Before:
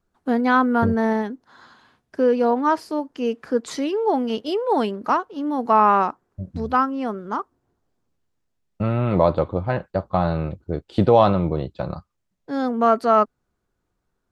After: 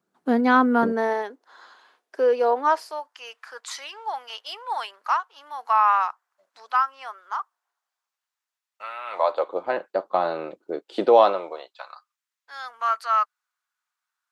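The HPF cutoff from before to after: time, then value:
HPF 24 dB/oct
0.67 s 160 Hz
1.16 s 410 Hz
2.62 s 410 Hz
3.17 s 930 Hz
9.04 s 930 Hz
9.67 s 330 Hz
11.19 s 330 Hz
11.91 s 1100 Hz

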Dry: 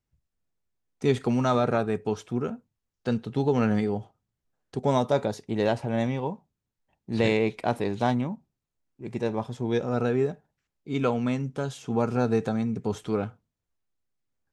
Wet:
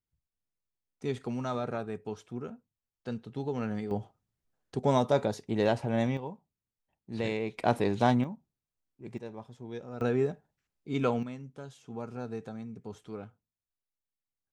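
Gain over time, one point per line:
-10 dB
from 3.91 s -2 dB
from 6.17 s -9 dB
from 7.58 s 0 dB
from 8.24 s -7 dB
from 9.18 s -14.5 dB
from 10.01 s -3 dB
from 11.23 s -14 dB

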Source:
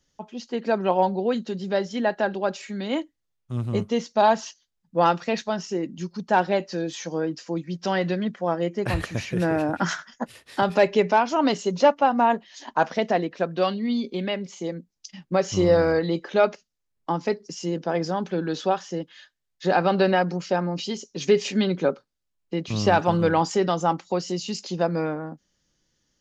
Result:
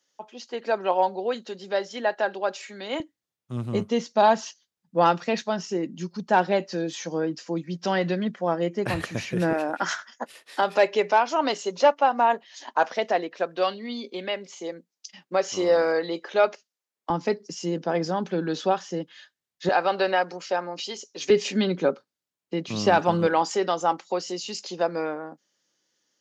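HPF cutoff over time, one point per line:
440 Hz
from 3 s 130 Hz
from 9.53 s 410 Hz
from 17.1 s 130 Hz
from 19.69 s 490 Hz
from 21.3 s 170 Hz
from 23.27 s 360 Hz

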